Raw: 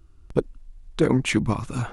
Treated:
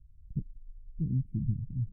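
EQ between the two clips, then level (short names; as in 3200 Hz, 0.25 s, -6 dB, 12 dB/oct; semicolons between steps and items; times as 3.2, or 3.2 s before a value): inverse Chebyshev band-stop 720–6500 Hz, stop band 70 dB; air absorption 130 m; -3.5 dB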